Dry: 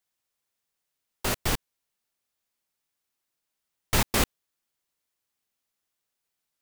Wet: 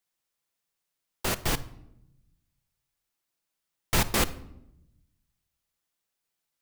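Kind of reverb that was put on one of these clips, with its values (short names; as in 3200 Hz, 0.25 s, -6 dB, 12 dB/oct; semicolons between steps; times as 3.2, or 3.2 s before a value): shoebox room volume 2500 m³, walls furnished, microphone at 0.75 m; gain -1 dB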